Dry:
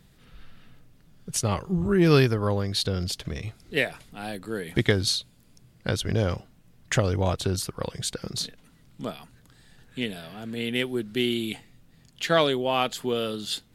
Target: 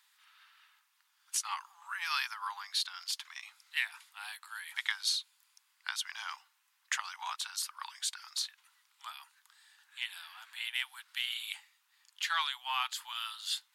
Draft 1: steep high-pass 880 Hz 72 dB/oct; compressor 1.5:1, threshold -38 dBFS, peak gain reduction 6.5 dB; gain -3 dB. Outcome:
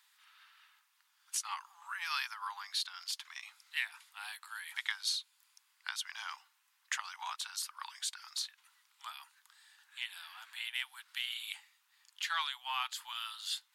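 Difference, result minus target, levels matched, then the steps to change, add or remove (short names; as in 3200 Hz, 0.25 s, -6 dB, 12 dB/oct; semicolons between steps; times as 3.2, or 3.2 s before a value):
compressor: peak gain reduction +3 dB
change: compressor 1.5:1, threshold -29.5 dBFS, peak gain reduction 3.5 dB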